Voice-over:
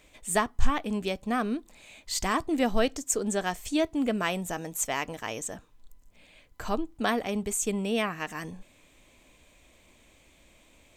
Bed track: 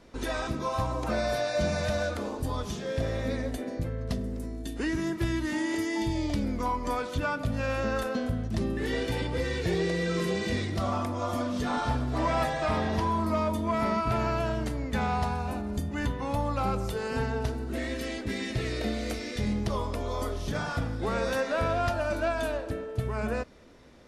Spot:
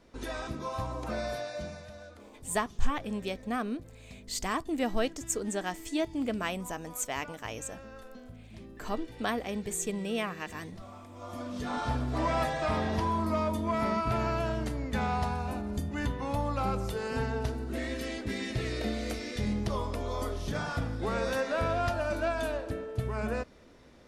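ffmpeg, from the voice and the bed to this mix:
ffmpeg -i stem1.wav -i stem2.wav -filter_complex "[0:a]adelay=2200,volume=-4.5dB[link_01];[1:a]volume=11dB,afade=type=out:start_time=1.24:duration=0.61:silence=0.223872,afade=type=in:start_time=11.08:duration=0.92:silence=0.149624[link_02];[link_01][link_02]amix=inputs=2:normalize=0" out.wav

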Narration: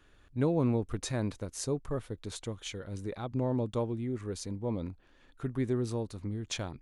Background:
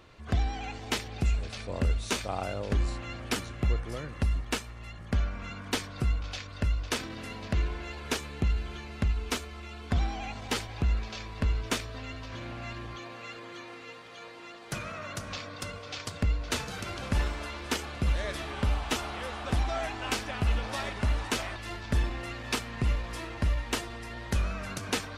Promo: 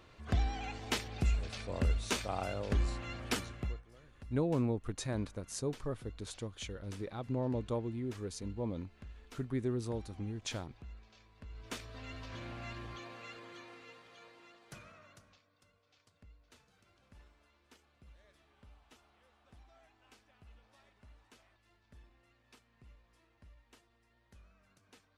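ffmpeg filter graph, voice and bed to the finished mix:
ffmpeg -i stem1.wav -i stem2.wav -filter_complex "[0:a]adelay=3950,volume=-4dB[link_01];[1:a]volume=13.5dB,afade=type=out:start_time=3.4:duration=0.43:silence=0.112202,afade=type=in:start_time=11.49:duration=0.7:silence=0.133352,afade=type=out:start_time=12.96:duration=2.45:silence=0.0473151[link_02];[link_01][link_02]amix=inputs=2:normalize=0" out.wav

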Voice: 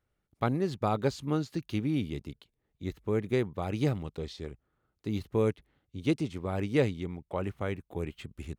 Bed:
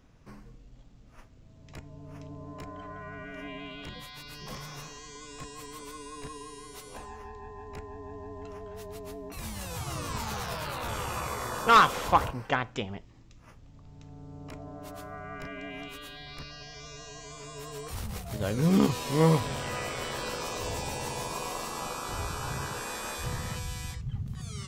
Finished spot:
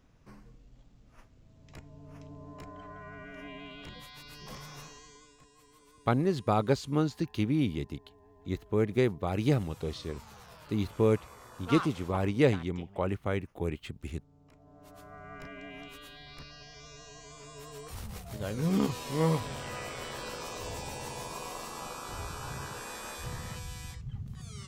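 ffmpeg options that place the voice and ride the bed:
ffmpeg -i stem1.wav -i stem2.wav -filter_complex "[0:a]adelay=5650,volume=2dB[link_01];[1:a]volume=8dB,afade=type=out:start_time=4.85:duration=0.53:silence=0.223872,afade=type=in:start_time=14.59:duration=0.77:silence=0.251189[link_02];[link_01][link_02]amix=inputs=2:normalize=0" out.wav

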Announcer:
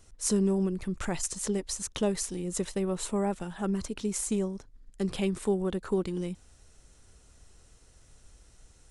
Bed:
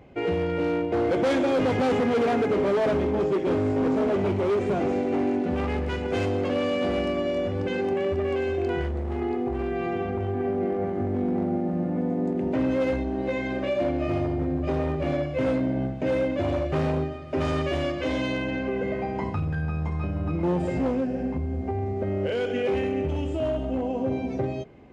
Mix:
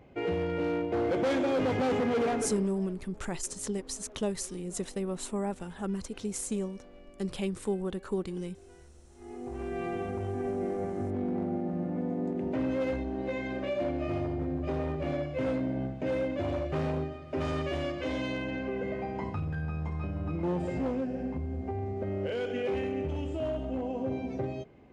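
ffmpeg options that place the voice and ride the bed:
ffmpeg -i stem1.wav -i stem2.wav -filter_complex "[0:a]adelay=2200,volume=-3.5dB[link_01];[1:a]volume=17.5dB,afade=type=out:start_time=2.27:duration=0.43:silence=0.0668344,afade=type=in:start_time=9.16:duration=0.63:silence=0.0749894[link_02];[link_01][link_02]amix=inputs=2:normalize=0" out.wav

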